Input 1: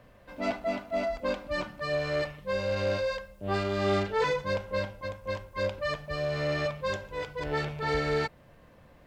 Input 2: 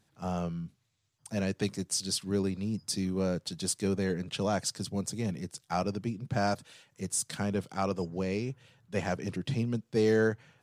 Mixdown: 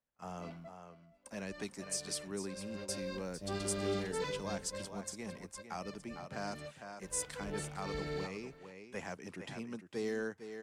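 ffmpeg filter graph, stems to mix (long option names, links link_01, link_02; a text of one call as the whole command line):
ffmpeg -i stem1.wav -i stem2.wav -filter_complex "[0:a]volume=3dB,afade=type=in:start_time=2.68:duration=0.67:silence=0.223872,afade=type=out:start_time=4.35:duration=0.7:silence=0.266073,afade=type=in:start_time=6.51:duration=0.56:silence=0.375837,asplit=2[link_01][link_02];[link_02]volume=-23dB[link_03];[1:a]agate=range=-19dB:threshold=-55dB:ratio=16:detection=peak,equalizer=frequency=125:width_type=o:width=1:gain=-9,equalizer=frequency=1000:width_type=o:width=1:gain=7,equalizer=frequency=2000:width_type=o:width=1:gain=6,equalizer=frequency=4000:width_type=o:width=1:gain=-3,equalizer=frequency=8000:width_type=o:width=1:gain=4,volume=-9dB,asplit=3[link_04][link_05][link_06];[link_05]volume=-11dB[link_07];[link_06]apad=whole_len=399571[link_08];[link_01][link_08]sidechaingate=range=-21dB:threshold=-53dB:ratio=16:detection=peak[link_09];[link_03][link_07]amix=inputs=2:normalize=0,aecho=0:1:453:1[link_10];[link_09][link_04][link_10]amix=inputs=3:normalize=0,equalizer=frequency=110:width=3.7:gain=-7.5,acrossover=split=390|3000[link_11][link_12][link_13];[link_12]acompressor=threshold=-48dB:ratio=2[link_14];[link_11][link_14][link_13]amix=inputs=3:normalize=0" out.wav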